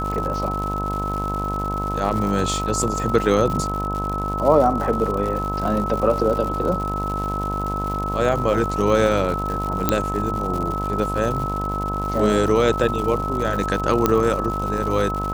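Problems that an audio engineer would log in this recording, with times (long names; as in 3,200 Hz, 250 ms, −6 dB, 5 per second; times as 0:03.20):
mains buzz 50 Hz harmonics 22 −27 dBFS
surface crackle 180 per second −27 dBFS
whistle 1,300 Hz −25 dBFS
0:09.89: click −2 dBFS
0:14.06: click −3 dBFS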